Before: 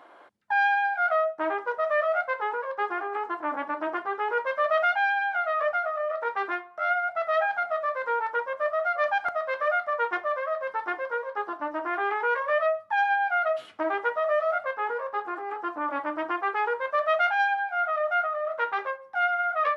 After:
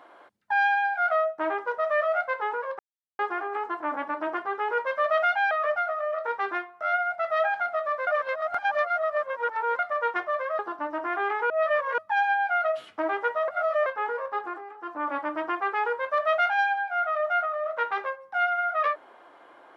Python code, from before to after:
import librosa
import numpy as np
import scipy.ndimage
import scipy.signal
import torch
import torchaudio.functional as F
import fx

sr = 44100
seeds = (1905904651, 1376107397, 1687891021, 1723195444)

y = fx.edit(x, sr, fx.insert_silence(at_s=2.79, length_s=0.4),
    fx.cut(start_s=5.11, length_s=0.37),
    fx.reverse_span(start_s=8.04, length_s=1.72),
    fx.cut(start_s=10.56, length_s=0.84),
    fx.reverse_span(start_s=12.31, length_s=0.48),
    fx.reverse_span(start_s=14.29, length_s=0.38),
    fx.fade_down_up(start_s=15.26, length_s=0.58, db=-13.0, fade_s=0.29), tone=tone)